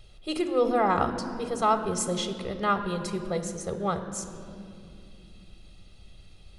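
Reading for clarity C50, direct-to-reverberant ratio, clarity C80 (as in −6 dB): 9.5 dB, 8.0 dB, 10.0 dB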